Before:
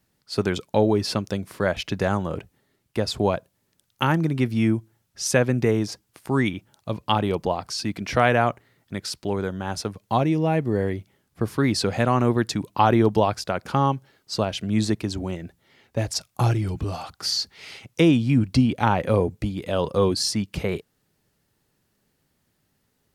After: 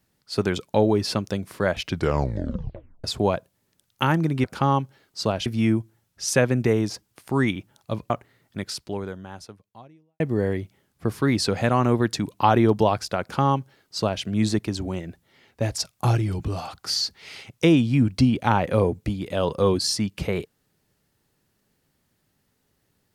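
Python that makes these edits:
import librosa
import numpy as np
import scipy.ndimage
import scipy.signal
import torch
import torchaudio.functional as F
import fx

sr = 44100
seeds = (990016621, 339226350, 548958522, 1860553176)

y = fx.edit(x, sr, fx.tape_stop(start_s=1.84, length_s=1.2),
    fx.cut(start_s=7.08, length_s=1.38),
    fx.fade_out_span(start_s=8.97, length_s=1.59, curve='qua'),
    fx.duplicate(start_s=13.57, length_s=1.02, to_s=4.44), tone=tone)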